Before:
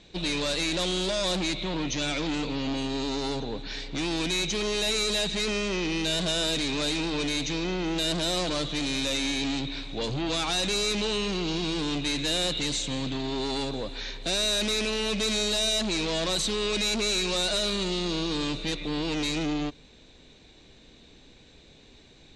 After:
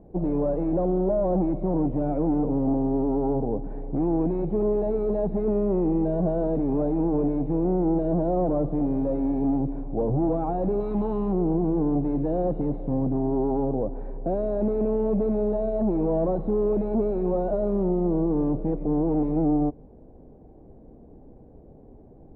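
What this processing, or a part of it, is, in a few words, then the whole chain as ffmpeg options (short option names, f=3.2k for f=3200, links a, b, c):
under water: -filter_complex "[0:a]lowpass=f=740:w=0.5412,lowpass=f=740:w=1.3066,equalizer=f=770:t=o:w=0.22:g=4.5,asettb=1/sr,asplit=3[a][b][c];[a]atrim=end=10.804[d];[b]atrim=start=10.8:end=11.33,asetpts=PTS-STARTPTS,afade=t=in:d=0.004:c=qsin,afade=t=out:st=0.526:d=0.004:c=qsin,equalizer=f=500:t=o:w=1:g=-8,equalizer=f=1k:t=o:w=1:g=6,equalizer=f=4k:t=o:w=1:g=12[e];[c]atrim=start=11.326[f];[d][e]acrossfade=d=0.004:c1=hsin:c2=qsin[g];[g][f]acrossfade=d=0.004:c1=qsin:c2=hsin,volume=7dB"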